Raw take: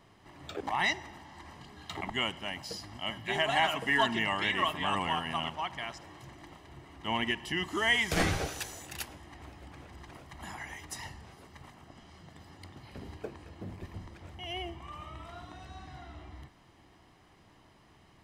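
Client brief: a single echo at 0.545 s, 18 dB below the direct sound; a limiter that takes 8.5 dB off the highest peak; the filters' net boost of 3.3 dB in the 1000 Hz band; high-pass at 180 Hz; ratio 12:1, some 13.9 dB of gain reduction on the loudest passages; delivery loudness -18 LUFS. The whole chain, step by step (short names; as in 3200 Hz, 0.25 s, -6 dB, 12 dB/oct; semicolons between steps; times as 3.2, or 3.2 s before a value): HPF 180 Hz; bell 1000 Hz +4 dB; compressor 12:1, threshold -34 dBFS; limiter -31 dBFS; echo 0.545 s -18 dB; gain +25.5 dB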